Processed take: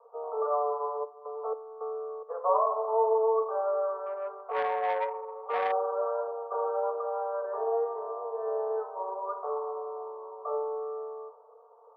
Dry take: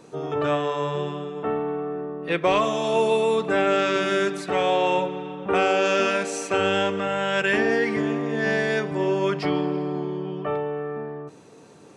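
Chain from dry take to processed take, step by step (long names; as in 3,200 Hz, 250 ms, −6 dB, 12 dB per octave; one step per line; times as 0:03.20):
Butterworth low-pass 1,200 Hz 72 dB per octave
convolution reverb RT60 1.0 s, pre-delay 3 ms, DRR 2.5 dB
0:01.03–0:02.28: gate pattern "x..xxx...x" 108 BPM −12 dB
Butterworth high-pass 450 Hz 96 dB per octave
0:04.06–0:05.72: saturating transformer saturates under 1,100 Hz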